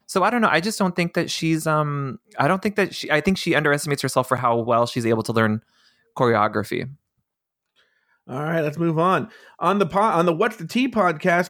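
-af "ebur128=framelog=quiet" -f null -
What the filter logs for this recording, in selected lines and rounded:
Integrated loudness:
  I:         -21.1 LUFS
  Threshold: -31.7 LUFS
Loudness range:
  LRA:         4.4 LU
  Threshold: -42.3 LUFS
  LRA low:   -25.3 LUFS
  LRA high:  -20.9 LUFS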